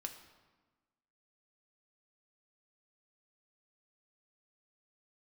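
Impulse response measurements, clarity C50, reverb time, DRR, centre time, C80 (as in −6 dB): 9.5 dB, 1.3 s, 4.5 dB, 18 ms, 11.0 dB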